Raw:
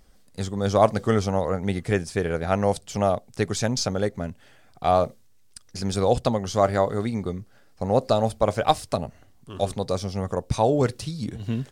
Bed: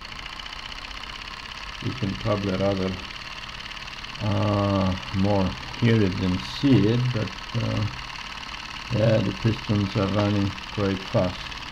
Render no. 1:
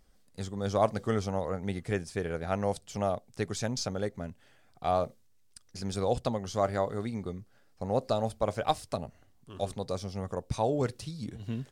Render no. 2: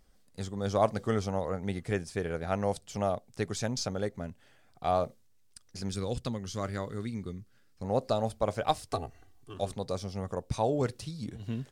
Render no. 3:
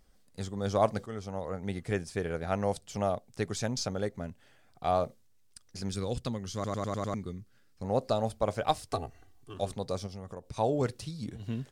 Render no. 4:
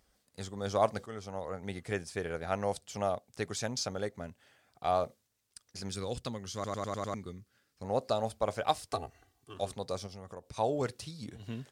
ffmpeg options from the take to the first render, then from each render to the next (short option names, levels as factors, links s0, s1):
-af "volume=0.398"
-filter_complex "[0:a]asettb=1/sr,asplit=3[s0][s1][s2];[s0]atrim=end=5.894[s3];[s1]atrim=start=5.89:end=7.84,asetpts=PTS-STARTPTS,afade=t=in:d=0.004:c=qsin,afade=t=out:st=1.946:d=0.004:c=qsin,equalizer=f=710:t=o:w=1.1:g=-12.5[s4];[s2]atrim=start=7.836[s5];[s3][s4]acrossfade=d=0.004:c1=hsin:c2=qsin[s6];[s6][s5]acrossfade=d=0.004:c1=qsin:c2=hsin,asettb=1/sr,asplit=3[s7][s8][s9];[s7]atrim=end=8.924[s10];[s8]atrim=start=8.92:end=9.54,asetpts=PTS-STARTPTS,afade=t=in:d=0.004:c=qsin,afade=t=out:st=0.616:d=0.004:c=qsin,aecho=1:1:2.6:0.96,atrim=end_sample=27342[s11];[s9]atrim=start=9.536[s12];[s10][s11]acrossfade=d=0.004:c1=hsin:c2=qsin[s13];[s13][s12]acrossfade=d=0.004:c1=qsin:c2=hsin"
-filter_complex "[0:a]asplit=3[s0][s1][s2];[s0]afade=t=out:st=10.06:d=0.02[s3];[s1]acompressor=threshold=0.00891:ratio=2.5:attack=3.2:release=140:knee=1:detection=peak,afade=t=in:st=10.06:d=0.02,afade=t=out:st=10.56:d=0.02[s4];[s2]afade=t=in:st=10.56:d=0.02[s5];[s3][s4][s5]amix=inputs=3:normalize=0,asplit=8[s6][s7][s8][s9][s10][s11][s12][s13];[s6]atrim=end=1.06,asetpts=PTS-STARTPTS,afade=t=out:st=1.056:d=0.004:c=hsin:silence=0.223872[s14];[s7]atrim=start=1.06:end=6.642,asetpts=PTS-STARTPTS,afade=t=in:d=1.07:c=qsin:silence=0.223872[s15];[s8]atrim=start=6.538:end=6.642[s16];[s9]atrim=start=6.538:end=6.642[s17];[s10]atrim=start=6.538:end=6.642[s18];[s11]atrim=start=6.538:end=6.642[s19];[s12]atrim=start=6.538:end=6.642[s20];[s13]atrim=start=7.138[s21];[s14][s15]concat=n=2:v=0:a=1[s22];[s22][s16]acrossfade=d=0.004:c1=hsin:c2=hsin[s23];[s23][s17]acrossfade=d=0.004:c1=hsin:c2=hsin[s24];[s24][s18]acrossfade=d=0.004:c1=hsin:c2=hsin[s25];[s25][s19]acrossfade=d=0.004:c1=hsin:c2=hsin[s26];[s26][s20]acrossfade=d=0.004:c1=hsin:c2=hsin[s27];[s27][s21]acrossfade=d=0.004:c1=hsin:c2=hsin"
-af "highpass=55,equalizer=f=150:w=0.42:g=-6"